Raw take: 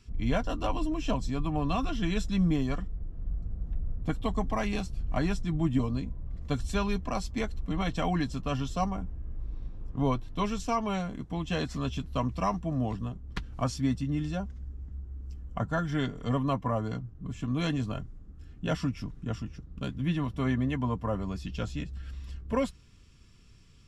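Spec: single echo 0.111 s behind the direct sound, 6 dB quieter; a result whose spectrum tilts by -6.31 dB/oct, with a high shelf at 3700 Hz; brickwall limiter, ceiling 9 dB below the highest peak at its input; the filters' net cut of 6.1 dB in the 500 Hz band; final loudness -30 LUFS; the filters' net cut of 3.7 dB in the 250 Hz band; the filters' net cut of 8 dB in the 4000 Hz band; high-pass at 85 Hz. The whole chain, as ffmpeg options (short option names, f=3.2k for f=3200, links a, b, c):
-af "highpass=85,equalizer=f=250:t=o:g=-3,equalizer=f=500:t=o:g=-7,highshelf=f=3.7k:g=-4.5,equalizer=f=4k:t=o:g=-8,alimiter=level_in=3.5dB:limit=-24dB:level=0:latency=1,volume=-3.5dB,aecho=1:1:111:0.501,volume=7.5dB"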